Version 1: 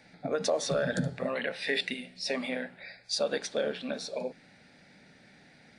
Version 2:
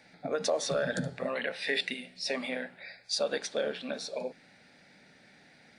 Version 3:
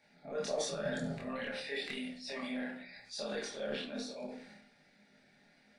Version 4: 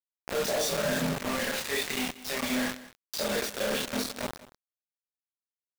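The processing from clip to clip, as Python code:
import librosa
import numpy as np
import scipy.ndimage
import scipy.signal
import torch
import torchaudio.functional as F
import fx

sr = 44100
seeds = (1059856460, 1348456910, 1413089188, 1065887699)

y1 = fx.low_shelf(x, sr, hz=240.0, db=-6.0)
y2 = fx.transient(y1, sr, attack_db=-4, sustain_db=10)
y2 = fx.chorus_voices(y2, sr, voices=2, hz=0.94, base_ms=26, depth_ms=3.0, mix_pct=50)
y2 = fx.room_shoebox(y2, sr, seeds[0], volume_m3=300.0, walls='furnished', distance_m=1.3)
y2 = y2 * 10.0 ** (-7.0 / 20.0)
y3 = fx.quant_companded(y2, sr, bits=2)
y3 = y3 + 10.0 ** (-17.5 / 20.0) * np.pad(y3, (int(186 * sr / 1000.0), 0))[:len(y3)]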